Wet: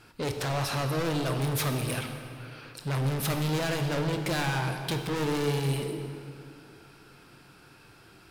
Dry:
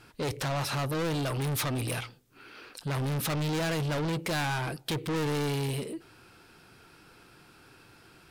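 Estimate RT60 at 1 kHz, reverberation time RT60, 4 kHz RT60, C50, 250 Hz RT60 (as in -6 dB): 2.5 s, 2.6 s, 1.8 s, 6.0 dB, 2.9 s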